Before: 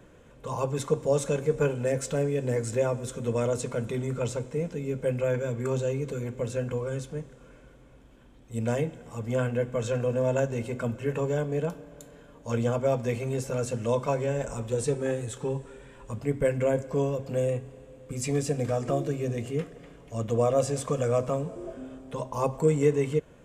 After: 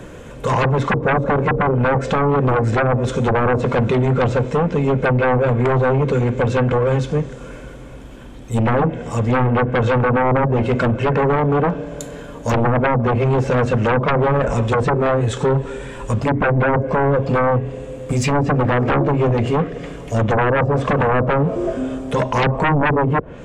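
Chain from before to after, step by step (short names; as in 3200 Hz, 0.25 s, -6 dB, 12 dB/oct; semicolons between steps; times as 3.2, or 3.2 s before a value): treble ducked by the level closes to 500 Hz, closed at -21 dBFS; sine folder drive 14 dB, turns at -12.5 dBFS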